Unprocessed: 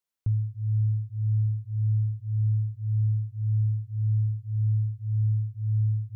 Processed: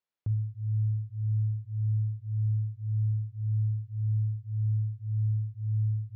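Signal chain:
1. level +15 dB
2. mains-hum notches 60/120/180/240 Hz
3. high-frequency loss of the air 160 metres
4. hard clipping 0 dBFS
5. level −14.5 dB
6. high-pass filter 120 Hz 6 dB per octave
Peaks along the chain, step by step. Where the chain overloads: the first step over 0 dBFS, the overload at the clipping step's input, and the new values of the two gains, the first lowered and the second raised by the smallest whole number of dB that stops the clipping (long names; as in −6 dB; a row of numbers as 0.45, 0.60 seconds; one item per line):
−4.5, −4.5, −4.5, −4.5, −19.0, −22.5 dBFS
no step passes full scale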